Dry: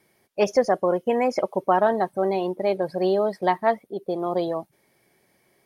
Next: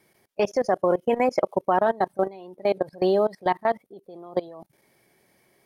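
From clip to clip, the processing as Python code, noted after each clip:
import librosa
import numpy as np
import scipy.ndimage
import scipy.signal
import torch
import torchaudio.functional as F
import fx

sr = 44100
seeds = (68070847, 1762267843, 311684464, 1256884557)

y = fx.level_steps(x, sr, step_db=22)
y = F.gain(torch.from_numpy(y), 2.5).numpy()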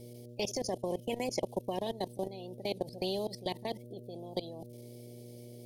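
y = fx.dmg_buzz(x, sr, base_hz=120.0, harmonics=5, level_db=-51.0, tilt_db=-6, odd_only=False)
y = scipy.signal.sosfilt(scipy.signal.cheby1(2, 1.0, [510.0, 3700.0], 'bandstop', fs=sr, output='sos'), y)
y = fx.spectral_comp(y, sr, ratio=2.0)
y = F.gain(torch.from_numpy(y), -8.0).numpy()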